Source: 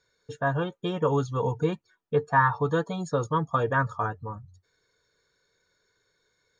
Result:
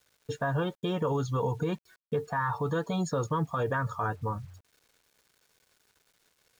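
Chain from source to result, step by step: in parallel at 0 dB: compressor 6:1, threshold -31 dBFS, peak gain reduction 14.5 dB; on the sum: limiter -19.5 dBFS, peak gain reduction 11 dB; bit-crush 10-bit; gain -1.5 dB

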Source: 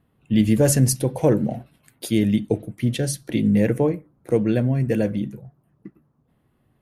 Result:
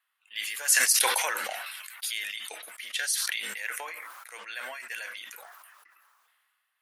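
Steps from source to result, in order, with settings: HPF 1300 Hz 24 dB/oct; sustainer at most 25 dB/s

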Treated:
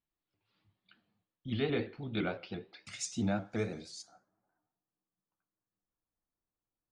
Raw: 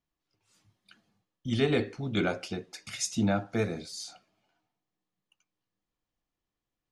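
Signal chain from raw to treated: steep low-pass 4400 Hz 48 dB/oct, from 2.85 s 9400 Hz, from 4.01 s 1700 Hz; reverb RT60 0.35 s, pre-delay 6 ms, DRR 11.5 dB; shaped vibrato saw up 5.9 Hz, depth 100 cents; gain -6.5 dB

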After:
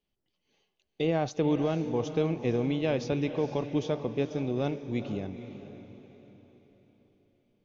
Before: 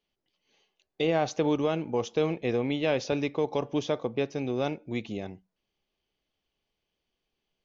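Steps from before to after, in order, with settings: low shelf 310 Hz +9.5 dB; diffused feedback echo 0.464 s, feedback 44%, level -11 dB; gain -5 dB

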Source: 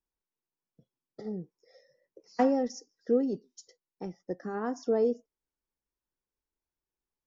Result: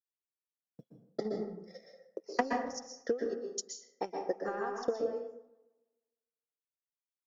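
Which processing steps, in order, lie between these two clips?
gate with hold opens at -56 dBFS; HPF 180 Hz 12 dB/oct, from 2.53 s 570 Hz; compressor 5:1, threshold -41 dBFS, peak gain reduction 18.5 dB; transient shaper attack +11 dB, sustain -7 dB; darkening echo 0.153 s, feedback 45%, low-pass 4800 Hz, level -23 dB; plate-style reverb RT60 0.69 s, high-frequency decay 0.5×, pre-delay 0.11 s, DRR 1.5 dB; gain +2 dB

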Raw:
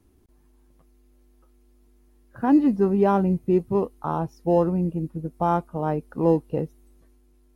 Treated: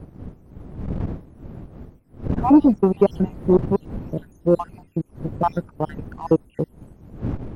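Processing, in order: random spectral dropouts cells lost 68%; wind noise 200 Hz -36 dBFS; in parallel at -4 dB: crossover distortion -45.5 dBFS; on the sum: core saturation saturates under 280 Hz; gain +2 dB

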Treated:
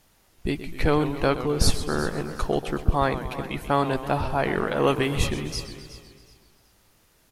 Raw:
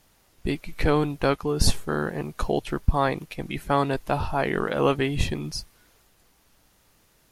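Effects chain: 4.87–5.27 high shelf 6200 Hz +8.5 dB; feedback echo 0.368 s, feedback 28%, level -15.5 dB; warbling echo 0.129 s, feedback 63%, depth 156 cents, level -12.5 dB

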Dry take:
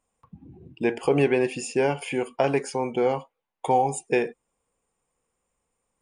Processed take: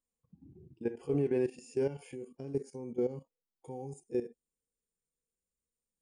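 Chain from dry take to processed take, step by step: harmonic-percussive split percussive -16 dB; band shelf 1500 Hz -9 dB 3 oct, from 2.14 s -16 dB; level quantiser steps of 13 dB; gain -2.5 dB

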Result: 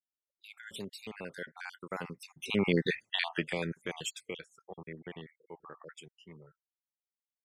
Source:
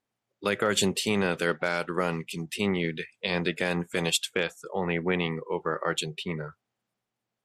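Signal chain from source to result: random spectral dropouts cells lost 50%; Doppler pass-by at 2.93, 13 m/s, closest 2.3 m; spectral noise reduction 15 dB; gain +6 dB

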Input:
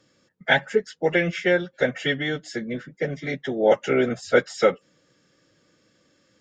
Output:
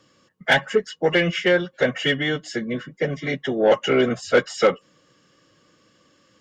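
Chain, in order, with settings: small resonant body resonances 1100/2900 Hz, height 14 dB, ringing for 45 ms; added harmonics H 5 -21 dB, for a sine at -5 dBFS

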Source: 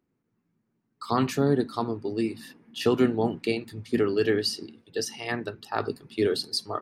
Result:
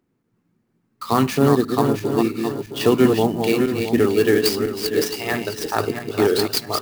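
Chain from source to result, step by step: regenerating reverse delay 0.333 s, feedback 55%, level -5 dB; clock jitter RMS 0.023 ms; gain +6.5 dB

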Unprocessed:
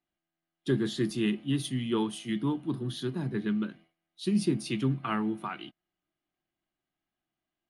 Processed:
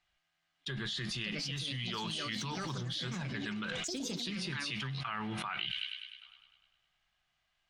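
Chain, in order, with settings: passive tone stack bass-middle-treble 10-0-10; gate with hold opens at -53 dBFS; echoes that change speed 0.744 s, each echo +5 st, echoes 3, each echo -6 dB; on a send: thin delay 0.101 s, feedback 62%, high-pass 3400 Hz, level -19.5 dB; on the sum: spectral gain 5.66–6.22, 210–1500 Hz -17 dB; air absorption 130 m; fast leveller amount 100%

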